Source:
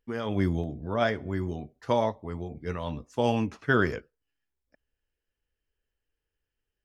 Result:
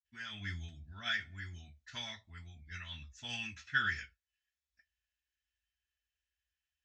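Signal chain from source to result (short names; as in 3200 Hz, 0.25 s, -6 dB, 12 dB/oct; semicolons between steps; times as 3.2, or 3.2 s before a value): HPF 920 Hz 6 dB/oct; tilt shelf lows -9 dB, about 1400 Hz; reverb, pre-delay 46 ms, DRR -60 dB; gain +12 dB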